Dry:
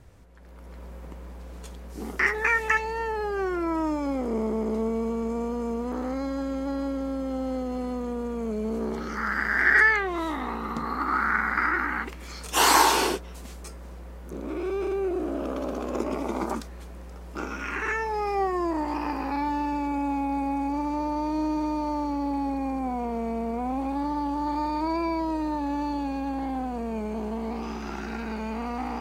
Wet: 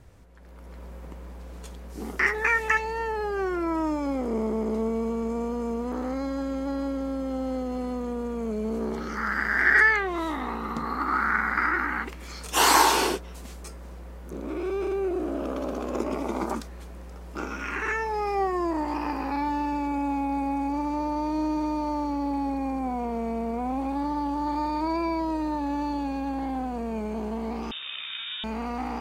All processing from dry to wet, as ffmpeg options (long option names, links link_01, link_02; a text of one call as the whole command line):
ffmpeg -i in.wav -filter_complex "[0:a]asettb=1/sr,asplit=3[link_01][link_02][link_03];[link_01]atrim=end=27.714[link_04];[link_02]atrim=start=27.71:end=28.44,asetpts=PTS-STARTPTS,afade=type=in:duration=0.004:curve=qsin,afade=type=out:start_time=0.726:duration=0.004:curve=qsin,highpass=250,lowpass=frequency=3300:width_type=q:width=0.5098,lowpass=frequency=3300:width_type=q:width=0.6013,lowpass=frequency=3300:width_type=q:width=0.9,lowpass=frequency=3300:width_type=q:width=2.563,afreqshift=-3900[link_05];[link_03]atrim=start=28.436[link_06];[link_04][link_05]acrossfade=duration=0.004:curve1=hsin:curve2=qsin[link_07];[link_07][link_06]acrossfade=duration=0.004:curve1=qsin:curve2=hsin" out.wav